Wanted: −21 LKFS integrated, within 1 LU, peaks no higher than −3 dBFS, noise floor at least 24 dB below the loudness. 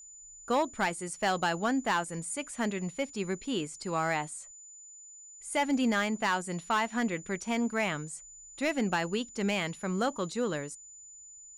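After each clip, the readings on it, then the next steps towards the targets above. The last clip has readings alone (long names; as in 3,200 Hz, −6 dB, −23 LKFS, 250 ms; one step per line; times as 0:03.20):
share of clipped samples 0.5%; peaks flattened at −21.0 dBFS; interfering tone 7,000 Hz; level of the tone −48 dBFS; integrated loudness −31.5 LKFS; sample peak −21.0 dBFS; target loudness −21.0 LKFS
→ clipped peaks rebuilt −21 dBFS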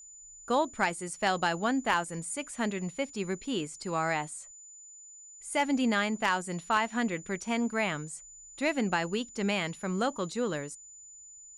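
share of clipped samples 0.0%; interfering tone 7,000 Hz; level of the tone −48 dBFS
→ notch filter 7,000 Hz, Q 30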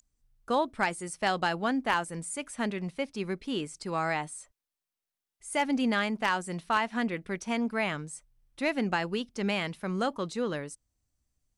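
interfering tone none found; integrated loudness −31.0 LKFS; sample peak −12.0 dBFS; target loudness −21.0 LKFS
→ level +10 dB
brickwall limiter −3 dBFS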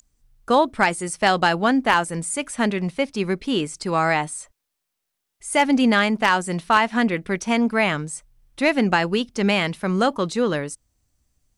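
integrated loudness −21.0 LKFS; sample peak −3.0 dBFS; background noise floor −80 dBFS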